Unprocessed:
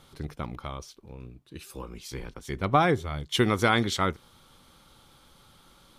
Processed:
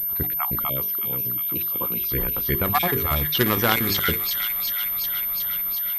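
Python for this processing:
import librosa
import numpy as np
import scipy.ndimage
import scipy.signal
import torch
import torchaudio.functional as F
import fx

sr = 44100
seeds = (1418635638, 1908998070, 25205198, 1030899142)

p1 = fx.spec_dropout(x, sr, seeds[0], share_pct=26)
p2 = (np.kron(scipy.signal.resample_poly(p1, 1, 3), np.eye(3)[0]) * 3)[:len(p1)]
p3 = fx.hum_notches(p2, sr, base_hz=50, count=9)
p4 = fx.env_lowpass(p3, sr, base_hz=2900.0, full_db=-20.0)
p5 = fx.over_compress(p4, sr, threshold_db=-30.0, ratio=-0.5)
p6 = p4 + F.gain(torch.from_numpy(p5), 0.0).numpy()
p7 = fx.highpass(p6, sr, hz=98.0, slope=24, at=(0.64, 2.01))
p8 = p7 + fx.echo_wet_highpass(p7, sr, ms=364, feedback_pct=76, hz=2300.0, wet_db=-3.5, dry=0)
p9 = fx.pwm(p8, sr, carrier_hz=13000.0)
y = F.gain(torch.from_numpy(p9), 1.0).numpy()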